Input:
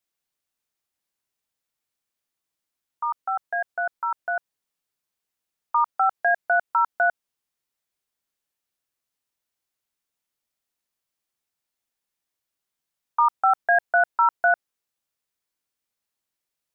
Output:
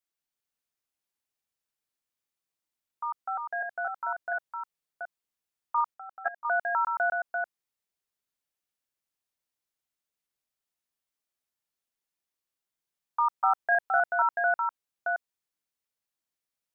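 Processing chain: chunks repeated in reverse 361 ms, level -4 dB; 5.94–6.45 s: level held to a coarse grid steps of 18 dB; trim -6.5 dB

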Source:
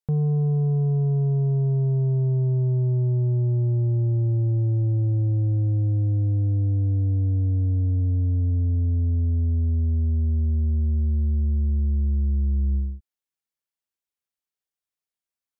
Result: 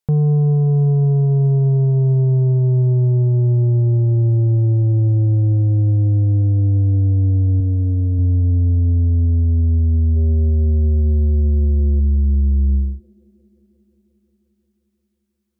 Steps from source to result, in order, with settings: 7.60–8.19 s: comb of notches 790 Hz; 10.17–12.00 s: time-frequency box 330–860 Hz +8 dB; feedback echo behind a band-pass 177 ms, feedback 81%, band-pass 430 Hz, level -22 dB; trim +7 dB

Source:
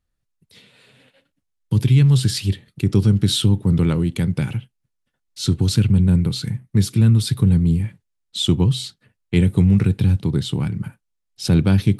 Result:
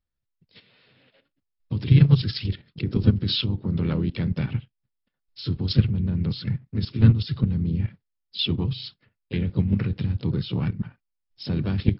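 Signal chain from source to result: level held to a coarse grid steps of 12 dB; harmony voices -4 st -10 dB, +3 st -9 dB; MP3 56 kbps 12 kHz

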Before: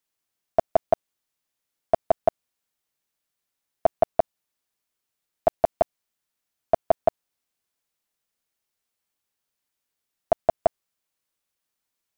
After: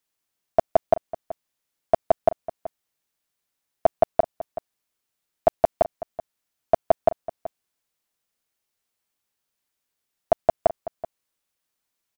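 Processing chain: echo from a far wall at 65 m, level -15 dB; trim +1.5 dB

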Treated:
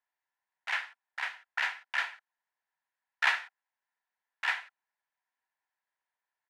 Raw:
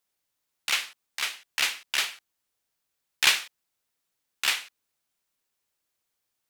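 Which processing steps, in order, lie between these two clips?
two resonant band-passes 1.3 kHz, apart 0.82 oct; harmony voices -4 st -7 dB; trim +4.5 dB

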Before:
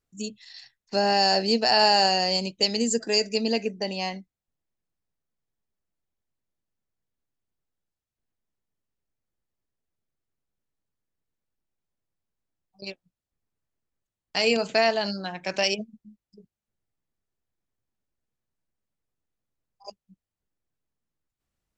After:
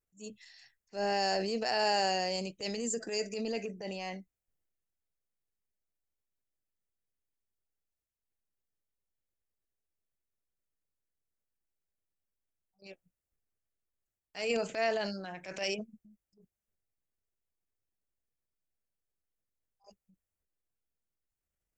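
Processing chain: graphic EQ 125/250/1000/4000 Hz -6/-6/-7/-11 dB; transient shaper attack -10 dB, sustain +5 dB; trim -3.5 dB

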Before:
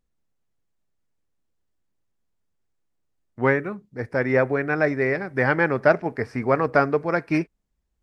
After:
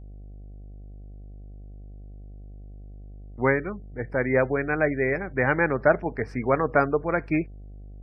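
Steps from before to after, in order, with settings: spectral gate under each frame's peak -30 dB strong; mains buzz 50 Hz, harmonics 15, -40 dBFS -9 dB/octave; trim -2 dB

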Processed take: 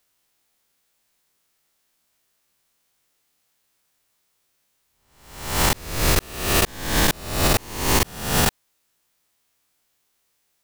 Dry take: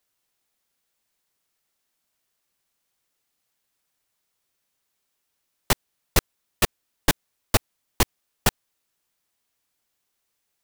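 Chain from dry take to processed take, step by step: reverse spectral sustain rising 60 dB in 0.71 s; peak limiter -12 dBFS, peak gain reduction 10 dB; trim +4.5 dB

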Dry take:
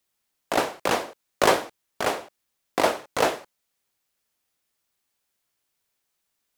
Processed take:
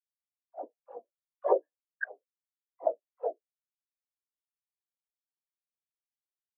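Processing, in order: 1.62–2.04 s: resonant low-pass 1.7 kHz, resonance Q 12; phase dispersion lows, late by 76 ms, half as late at 480 Hz; on a send: delay 202 ms -23 dB; on the sum: spectral contrast expander 4:1; trim -6.5 dB

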